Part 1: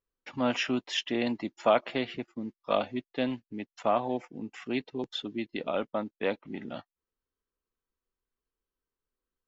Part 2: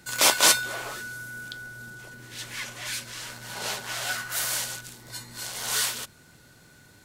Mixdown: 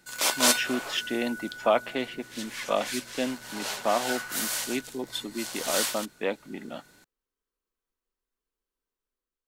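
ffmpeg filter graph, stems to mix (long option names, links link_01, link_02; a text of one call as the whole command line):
ffmpeg -i stem1.wav -i stem2.wav -filter_complex "[0:a]volume=-4dB[link_01];[1:a]volume=-7dB[link_02];[link_01][link_02]amix=inputs=2:normalize=0,equalizer=frequency=96:width_type=o:width=0.78:gain=-14.5,dynaudnorm=framelen=120:gausssize=7:maxgain=5dB" out.wav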